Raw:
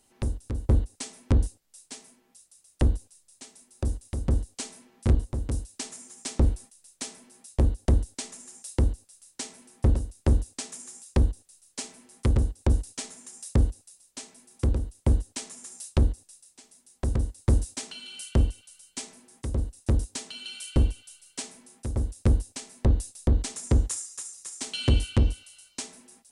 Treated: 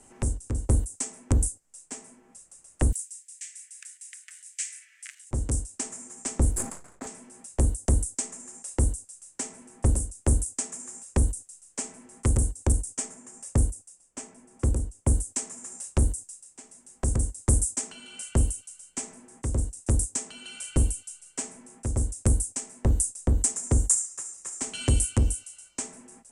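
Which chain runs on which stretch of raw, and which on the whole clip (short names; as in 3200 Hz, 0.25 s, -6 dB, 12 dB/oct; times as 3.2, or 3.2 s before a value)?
2.92–5.31 G.711 law mismatch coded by mu + steep high-pass 1800 Hz 48 dB/oct
6.51–7.07 median filter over 15 samples + sustainer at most 79 dB/s
12.72–15.15 notch 4000 Hz, Q 15 + mismatched tape noise reduction decoder only
whole clip: low-pass opened by the level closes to 2800 Hz, open at -17 dBFS; resonant high shelf 5700 Hz +13.5 dB, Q 3; three-band squash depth 40%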